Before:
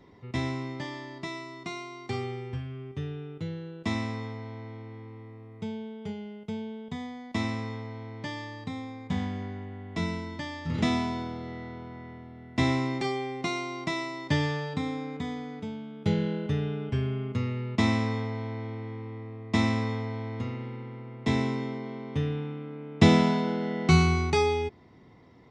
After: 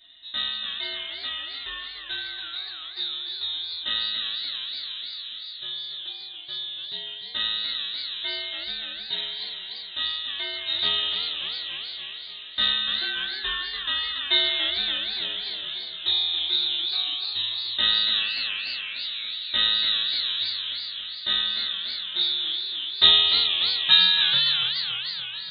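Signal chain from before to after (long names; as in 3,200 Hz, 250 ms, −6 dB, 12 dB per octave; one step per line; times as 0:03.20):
0:18.19–0:18.95: high-pass with resonance 1,200 Hz, resonance Q 11
feedback delay network reverb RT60 0.36 s, low-frequency decay 0.8×, high-frequency decay 0.9×, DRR −5 dB
voice inversion scrambler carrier 3,900 Hz
feedback echo with a swinging delay time 288 ms, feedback 68%, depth 194 cents, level −8 dB
level −4 dB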